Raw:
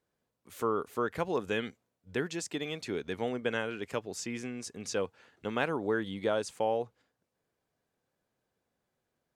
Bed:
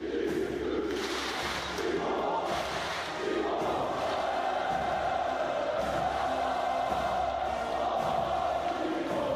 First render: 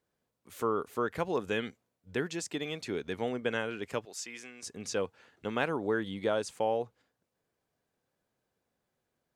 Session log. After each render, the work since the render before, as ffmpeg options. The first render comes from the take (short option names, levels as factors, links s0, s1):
-filter_complex "[0:a]asettb=1/sr,asplit=3[s0][s1][s2];[s0]atrim=end=4.054[s3];[s1]atrim=start=4.05:end=4.63,asetpts=PTS-STARTPTS,afade=t=in:d=0.004:c=qsin,afade=t=out:st=0.576:d=0.004:c=qsin,highpass=f=1300:p=1[s4];[s2]atrim=start=4.626[s5];[s3][s4]acrossfade=d=0.004:c1=hsin:c2=qsin[s6];[s6][s5]acrossfade=d=0.004:c1=qsin:c2=hsin"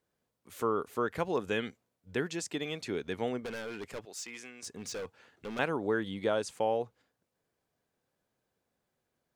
-filter_complex "[0:a]asettb=1/sr,asplit=3[s0][s1][s2];[s0]atrim=end=3.414[s3];[s1]atrim=start=3.41:end=5.59,asetpts=PTS-STARTPTS,afade=t=in:d=0.004:c=qsin,afade=t=out:st=2.176:d=0.004:c=qsin,volume=63.1,asoftclip=hard,volume=0.0158[s4];[s2]atrim=start=5.586[s5];[s3][s4]acrossfade=d=0.004:c1=hsin:c2=qsin[s6];[s6][s5]acrossfade=d=0.004:c1=qsin:c2=hsin"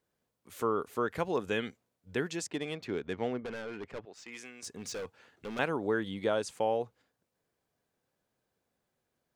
-filter_complex "[0:a]asettb=1/sr,asplit=3[s0][s1][s2];[s0]atrim=end=2.474[s3];[s1]atrim=start=2.47:end=4.32,asetpts=PTS-STARTPTS,afade=t=in:d=0.004:c=qsin,afade=t=out:st=1.846:d=0.004:c=qsin,adynamicsmooth=sensitivity=7:basefreq=2400[s4];[s2]atrim=start=4.316[s5];[s3][s4]acrossfade=d=0.004:c1=hsin:c2=qsin[s6];[s6][s5]acrossfade=d=0.004:c1=qsin:c2=hsin"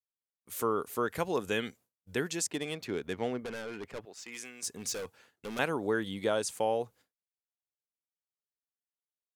-af "agate=range=0.0224:threshold=0.002:ratio=3:detection=peak,equalizer=f=13000:t=o:w=1.5:g=13"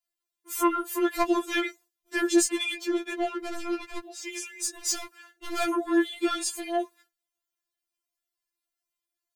-af "aeval=exprs='0.237*(cos(1*acos(clip(val(0)/0.237,-1,1)))-cos(1*PI/2))+0.106*(cos(5*acos(clip(val(0)/0.237,-1,1)))-cos(5*PI/2))+0.00422*(cos(8*acos(clip(val(0)/0.237,-1,1)))-cos(8*PI/2))':c=same,afftfilt=real='re*4*eq(mod(b,16),0)':imag='im*4*eq(mod(b,16),0)':win_size=2048:overlap=0.75"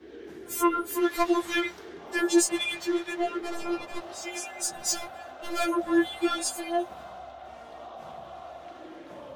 -filter_complex "[1:a]volume=0.224[s0];[0:a][s0]amix=inputs=2:normalize=0"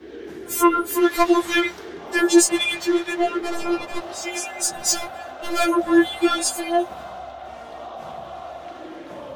-af "volume=2.37"